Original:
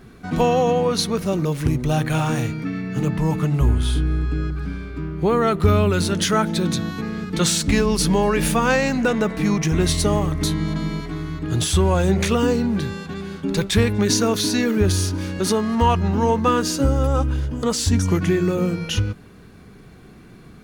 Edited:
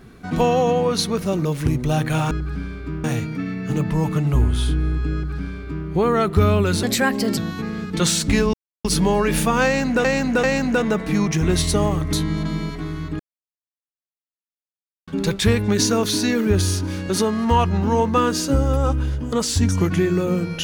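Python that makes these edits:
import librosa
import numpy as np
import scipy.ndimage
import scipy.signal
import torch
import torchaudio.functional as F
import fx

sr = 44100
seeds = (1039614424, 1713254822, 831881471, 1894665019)

y = fx.edit(x, sr, fx.duplicate(start_s=4.41, length_s=0.73, to_s=2.31),
    fx.speed_span(start_s=6.1, length_s=0.67, speed=1.23),
    fx.insert_silence(at_s=7.93, length_s=0.31),
    fx.repeat(start_s=8.74, length_s=0.39, count=3),
    fx.silence(start_s=11.5, length_s=1.88), tone=tone)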